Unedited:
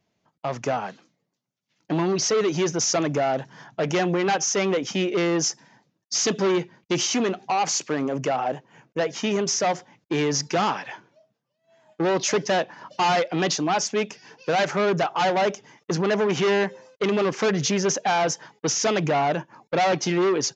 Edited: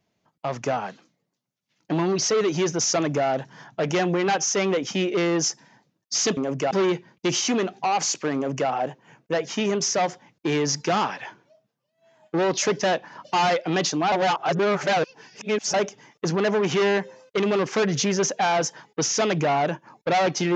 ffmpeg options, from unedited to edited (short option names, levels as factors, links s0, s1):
-filter_complex "[0:a]asplit=5[s0][s1][s2][s3][s4];[s0]atrim=end=6.372[s5];[s1]atrim=start=8.008:end=8.352[s6];[s2]atrim=start=6.368:end=13.782[s7];[s3]atrim=start=13.778:end=15.402,asetpts=PTS-STARTPTS,areverse[s8];[s4]atrim=start=15.398[s9];[s5][s6]acrossfade=d=0.004:c1=hsin:c2=hsin[s10];[s10][s7]acrossfade=d=0.004:c1=hsin:c2=hsin[s11];[s11][s8]acrossfade=d=0.004:c1=hsin:c2=hsin[s12];[s12][s9]acrossfade=d=0.004:c1=hsin:c2=hsin"